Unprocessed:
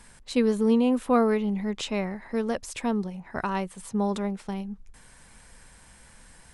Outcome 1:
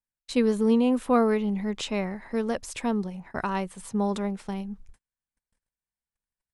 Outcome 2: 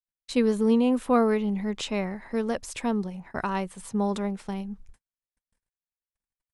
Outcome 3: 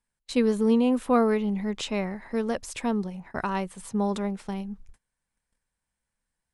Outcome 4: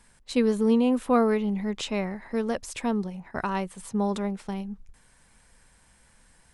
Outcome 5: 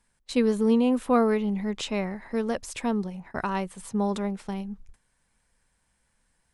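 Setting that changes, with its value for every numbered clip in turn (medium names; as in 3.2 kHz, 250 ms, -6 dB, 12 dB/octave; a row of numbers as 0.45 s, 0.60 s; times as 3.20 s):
gate, range: -46 dB, -59 dB, -32 dB, -7 dB, -19 dB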